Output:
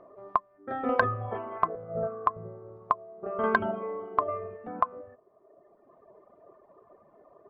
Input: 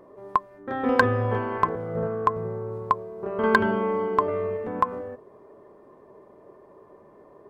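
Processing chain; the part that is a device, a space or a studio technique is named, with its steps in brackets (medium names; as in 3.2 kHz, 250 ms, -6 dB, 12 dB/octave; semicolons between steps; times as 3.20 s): inside a cardboard box (low-pass 3.5 kHz 12 dB/octave; small resonant body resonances 680/1200 Hz, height 13 dB, ringing for 30 ms); reverb removal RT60 1.6 s; trim -6.5 dB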